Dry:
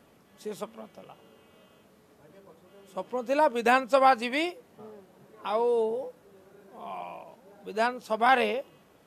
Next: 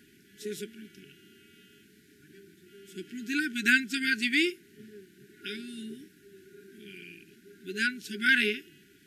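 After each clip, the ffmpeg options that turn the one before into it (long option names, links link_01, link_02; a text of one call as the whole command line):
ffmpeg -i in.wav -af "afftfilt=real='re*(1-between(b*sr/4096,420,1400))':imag='im*(1-between(b*sr/4096,420,1400))':win_size=4096:overlap=0.75,lowshelf=frequency=190:gain=-8,volume=5dB" out.wav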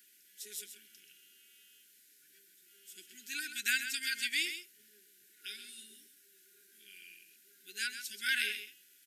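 ffmpeg -i in.wav -af "aderivative,aecho=1:1:131:0.335,volume=2.5dB" out.wav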